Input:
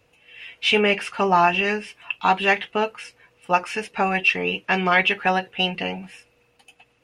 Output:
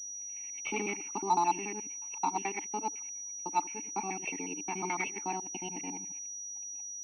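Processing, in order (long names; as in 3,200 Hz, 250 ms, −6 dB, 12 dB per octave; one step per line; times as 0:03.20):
reversed piece by piece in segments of 72 ms
formant filter u
switching amplifier with a slow clock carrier 5,800 Hz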